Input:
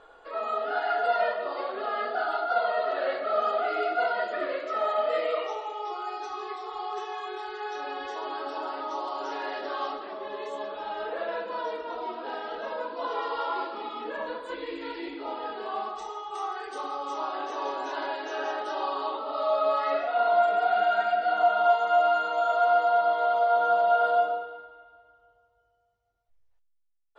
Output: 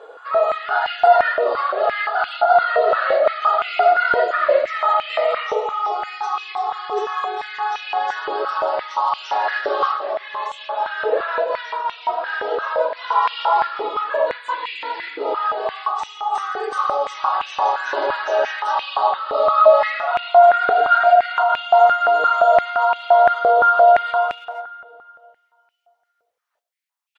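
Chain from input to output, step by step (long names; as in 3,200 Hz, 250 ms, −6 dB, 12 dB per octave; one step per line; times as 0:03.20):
far-end echo of a speakerphone 380 ms, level −22 dB
boost into a limiter +18 dB
high-pass on a step sequencer 5.8 Hz 460–2,600 Hz
level −11 dB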